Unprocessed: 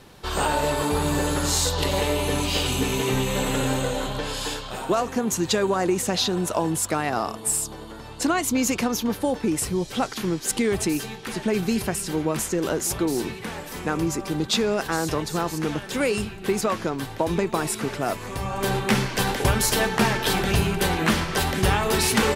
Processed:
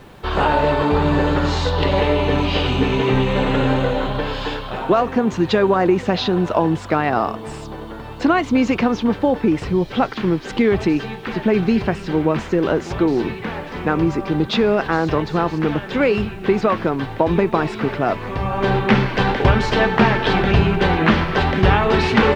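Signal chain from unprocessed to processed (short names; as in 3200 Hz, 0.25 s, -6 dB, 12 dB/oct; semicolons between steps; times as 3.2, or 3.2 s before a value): Bessel low-pass 2600 Hz, order 4; added noise pink -63 dBFS; gain +7 dB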